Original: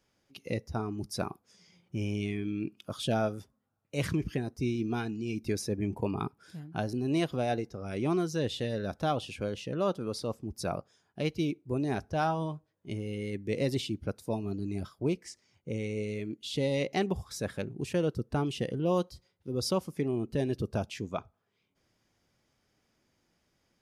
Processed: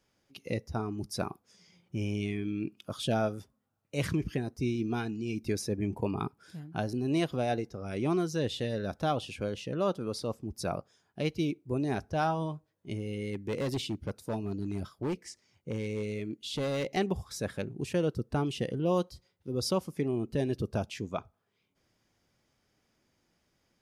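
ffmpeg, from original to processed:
ffmpeg -i in.wav -filter_complex "[0:a]asettb=1/sr,asplit=3[link_01][link_02][link_03];[link_01]atrim=end=13.294[link_04];[link_02]atrim=start=13.29:end=16.97,asetpts=PTS-STARTPTS,afade=type=in:duration=0.004:curve=qsin,afade=type=out:start_time=3.676:duration=0.004:curve=qsin,asoftclip=type=hard:threshold=-28dB[link_05];[link_03]atrim=start=16.966[link_06];[link_04][link_05]acrossfade=duration=0.004:curve1=hsin:curve2=qsin[link_07];[link_07][link_06]acrossfade=duration=0.004:curve1=qsin:curve2=hsin" out.wav

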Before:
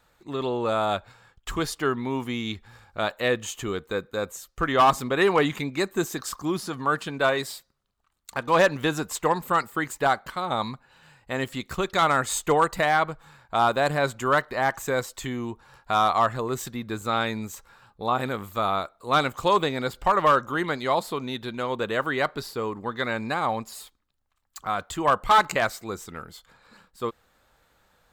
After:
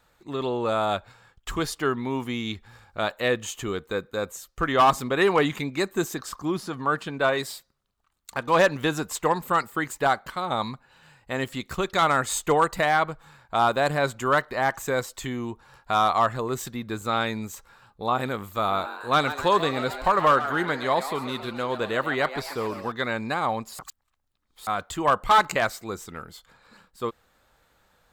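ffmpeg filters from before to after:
ffmpeg -i in.wav -filter_complex "[0:a]asettb=1/sr,asplit=3[link_01][link_02][link_03];[link_01]atrim=end=6.144[link_04];[link_02]atrim=start=6.14:end=7.33,asetpts=PTS-STARTPTS,afade=type=in:duration=0.004:curve=qsin,afade=type=out:start_time=1.186:duration=0.004:curve=qsin,highshelf=frequency=4200:gain=-6[link_05];[link_03]atrim=start=7.326[link_06];[link_04][link_05]acrossfade=duration=0.004:curve1=hsin:curve2=qsin[link_07];[link_07][link_06]acrossfade=duration=0.004:curve1=qsin:curve2=hsin,asettb=1/sr,asplit=3[link_08][link_09][link_10];[link_08]atrim=end=18.424[link_11];[link_09]atrim=start=18.42:end=22.92,asetpts=PTS-STARTPTS,afade=type=in:duration=0.004:curve=qsin,afade=type=out:start_time=4.496:duration=0.004:curve=qsin,asplit=8[link_12][link_13][link_14][link_15][link_16][link_17][link_18][link_19];[link_13]adelay=136,afreqshift=130,volume=-12dB[link_20];[link_14]adelay=272,afreqshift=260,volume=-16dB[link_21];[link_15]adelay=408,afreqshift=390,volume=-20dB[link_22];[link_16]adelay=544,afreqshift=520,volume=-24dB[link_23];[link_17]adelay=680,afreqshift=650,volume=-28.1dB[link_24];[link_18]adelay=816,afreqshift=780,volume=-32.1dB[link_25];[link_19]adelay=952,afreqshift=910,volume=-36.1dB[link_26];[link_12][link_20][link_21][link_22][link_23][link_24][link_25][link_26]amix=inputs=8:normalize=0,atrim=end_sample=198450[link_27];[link_10]atrim=start=22.916[link_28];[link_11][link_27]acrossfade=duration=0.004:curve1=hsin:curve2=qsin[link_29];[link_29][link_28]acrossfade=duration=0.004:curve1=qsin:curve2=hsin,asplit=3[link_30][link_31][link_32];[link_30]atrim=end=23.792[link_33];[link_31]atrim=start=23.788:end=24.672,asetpts=PTS-STARTPTS,areverse[link_34];[link_32]atrim=start=24.668[link_35];[link_33][link_34]acrossfade=duration=0.004:curve1=hsin:curve2=hsin[link_36];[link_36][link_35]acrossfade=duration=0.004:curve1=hsin:curve2=hsin" out.wav

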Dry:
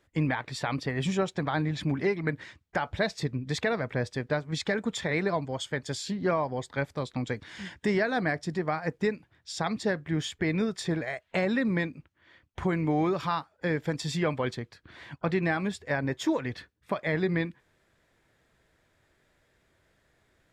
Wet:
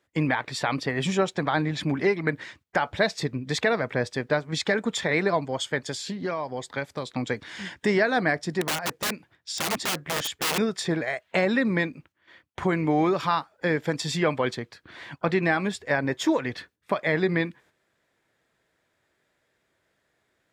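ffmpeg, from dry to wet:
ffmpeg -i in.wav -filter_complex "[0:a]asettb=1/sr,asplit=3[link_01][link_02][link_03];[link_01]atrim=end=5.804[link_04];[link_02]atrim=start=5.8:end=7.07,asetpts=PTS-STARTPTS,afade=type=in:duration=0.004:curve=qsin,afade=type=out:start_time=1.266:duration=0.004:curve=qsin,acrossover=split=2900|7300[link_05][link_06][link_07];[link_05]acompressor=threshold=-32dB:ratio=4[link_08];[link_06]acompressor=threshold=-42dB:ratio=4[link_09];[link_07]acompressor=threshold=-49dB:ratio=4[link_10];[link_08][link_09][link_10]amix=inputs=3:normalize=0[link_11];[link_03]atrim=start=7.066[link_12];[link_04][link_11]acrossfade=duration=0.004:curve1=hsin:curve2=qsin[link_13];[link_13][link_12]acrossfade=duration=0.004:curve1=qsin:curve2=hsin,asettb=1/sr,asplit=3[link_14][link_15][link_16];[link_14]atrim=end=8.614[link_17];[link_15]atrim=start=8.61:end=10.58,asetpts=PTS-STARTPTS,afade=type=in:duration=0.004:curve=qsin,afade=type=out:start_time=1.966:duration=0.004:curve=qsin,aeval=exprs='(mod(21.1*val(0)+1,2)-1)/21.1':channel_layout=same[link_18];[link_16]atrim=start=10.576[link_19];[link_17][link_18]acrossfade=duration=0.004:curve1=hsin:curve2=qsin[link_20];[link_20][link_19]acrossfade=duration=0.004:curve1=qsin:curve2=hsin,highpass=frequency=220:poles=1,agate=range=-8dB:threshold=-60dB:ratio=16:detection=peak,volume=5.5dB" out.wav

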